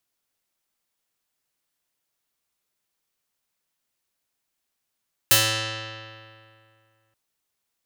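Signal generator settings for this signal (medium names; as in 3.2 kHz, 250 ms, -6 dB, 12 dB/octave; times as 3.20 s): plucked string A2, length 1.83 s, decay 2.36 s, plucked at 0.48, medium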